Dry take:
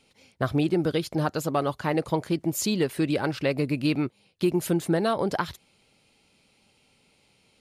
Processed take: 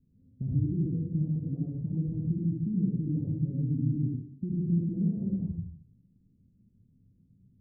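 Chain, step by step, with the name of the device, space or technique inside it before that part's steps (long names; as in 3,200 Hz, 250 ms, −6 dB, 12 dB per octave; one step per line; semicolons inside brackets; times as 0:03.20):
club heard from the street (brickwall limiter −22 dBFS, peak gain reduction 10 dB; low-pass filter 210 Hz 24 dB per octave; convolution reverb RT60 0.60 s, pre-delay 57 ms, DRR −2.5 dB)
level +4.5 dB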